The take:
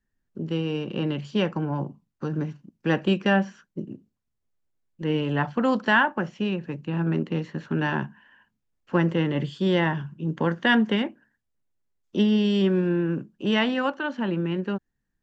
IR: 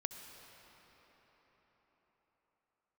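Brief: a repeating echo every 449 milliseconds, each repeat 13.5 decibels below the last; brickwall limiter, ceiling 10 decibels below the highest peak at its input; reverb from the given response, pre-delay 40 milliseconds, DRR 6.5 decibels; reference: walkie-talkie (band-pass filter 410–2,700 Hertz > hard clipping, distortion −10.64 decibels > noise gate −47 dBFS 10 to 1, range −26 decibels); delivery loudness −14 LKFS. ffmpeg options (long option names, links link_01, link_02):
-filter_complex "[0:a]alimiter=limit=-18dB:level=0:latency=1,aecho=1:1:449|898:0.211|0.0444,asplit=2[link_01][link_02];[1:a]atrim=start_sample=2205,adelay=40[link_03];[link_02][link_03]afir=irnorm=-1:irlink=0,volume=-5.5dB[link_04];[link_01][link_04]amix=inputs=2:normalize=0,highpass=410,lowpass=2700,asoftclip=type=hard:threshold=-29dB,agate=range=-26dB:threshold=-47dB:ratio=10,volume=21dB"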